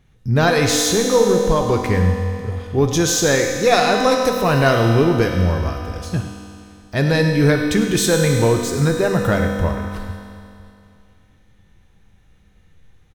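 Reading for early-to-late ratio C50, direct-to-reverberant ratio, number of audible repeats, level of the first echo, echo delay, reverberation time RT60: 3.0 dB, 1.5 dB, 1, −13.0 dB, 104 ms, 2.6 s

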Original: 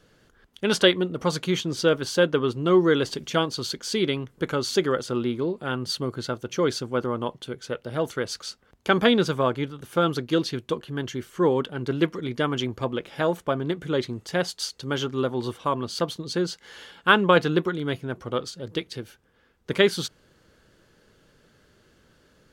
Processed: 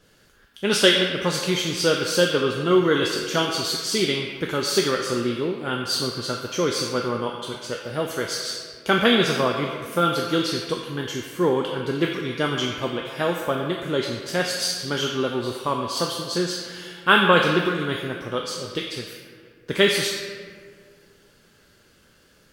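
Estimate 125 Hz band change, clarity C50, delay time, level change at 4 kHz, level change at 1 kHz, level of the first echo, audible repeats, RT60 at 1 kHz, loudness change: 0.0 dB, 2.0 dB, no echo audible, +5.5 dB, +2.5 dB, no echo audible, no echo audible, 1.6 s, +2.5 dB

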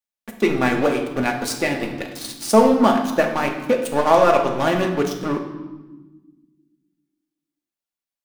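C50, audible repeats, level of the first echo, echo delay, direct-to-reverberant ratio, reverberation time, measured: 7.0 dB, no echo audible, no echo audible, no echo audible, 1.5 dB, 1.3 s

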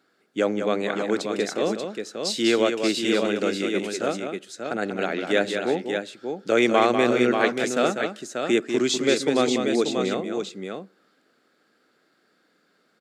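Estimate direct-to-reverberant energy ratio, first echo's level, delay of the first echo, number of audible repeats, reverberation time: no reverb audible, −7.0 dB, 194 ms, 2, no reverb audible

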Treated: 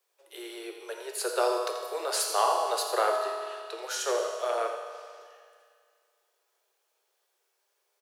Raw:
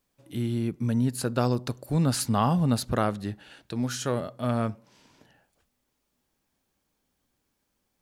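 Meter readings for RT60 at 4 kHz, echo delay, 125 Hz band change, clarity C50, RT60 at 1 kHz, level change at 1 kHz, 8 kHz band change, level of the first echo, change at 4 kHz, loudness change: 2.0 s, 84 ms, below −40 dB, 3.0 dB, 2.1 s, +3.0 dB, +2.0 dB, −10.5 dB, +2.5 dB, −2.0 dB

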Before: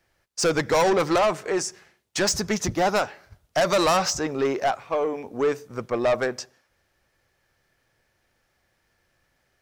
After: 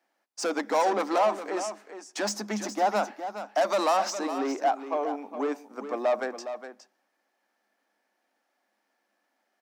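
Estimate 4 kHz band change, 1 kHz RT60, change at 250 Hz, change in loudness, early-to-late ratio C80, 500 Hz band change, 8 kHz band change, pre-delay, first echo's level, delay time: −8.5 dB, no reverb audible, −5.0 dB, −4.5 dB, no reverb audible, −5.0 dB, −8.5 dB, no reverb audible, −10.5 dB, 413 ms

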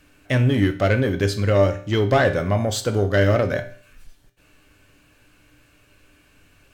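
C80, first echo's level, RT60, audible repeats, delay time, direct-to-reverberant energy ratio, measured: 16.5 dB, no echo audible, 0.50 s, no echo audible, no echo audible, 6.0 dB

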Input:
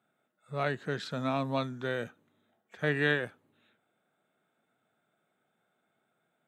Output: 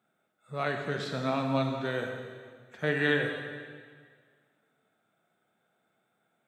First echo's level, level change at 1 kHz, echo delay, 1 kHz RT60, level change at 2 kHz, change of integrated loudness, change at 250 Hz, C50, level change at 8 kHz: no echo audible, +2.0 dB, no echo audible, 1.8 s, +1.5 dB, +1.5 dB, +2.5 dB, 4.5 dB, can't be measured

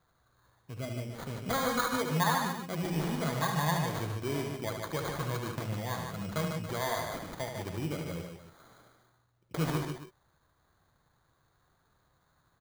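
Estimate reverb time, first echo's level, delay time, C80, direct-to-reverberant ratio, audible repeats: no reverb audible, −6.5 dB, 74 ms, no reverb audible, no reverb audible, 3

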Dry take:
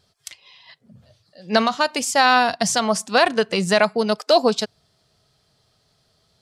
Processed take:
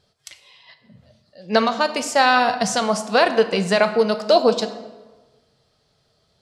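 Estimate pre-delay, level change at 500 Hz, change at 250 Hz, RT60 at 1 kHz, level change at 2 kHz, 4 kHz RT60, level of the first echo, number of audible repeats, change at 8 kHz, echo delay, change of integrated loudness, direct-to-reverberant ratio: 3 ms, +2.0 dB, 0.0 dB, 1.2 s, −0.5 dB, 0.85 s, no echo audible, no echo audible, −3.5 dB, no echo audible, 0.0 dB, 8.0 dB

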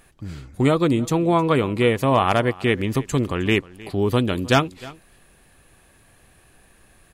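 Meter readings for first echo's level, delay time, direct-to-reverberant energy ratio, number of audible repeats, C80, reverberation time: −20.5 dB, 311 ms, no reverb audible, 1, no reverb audible, no reverb audible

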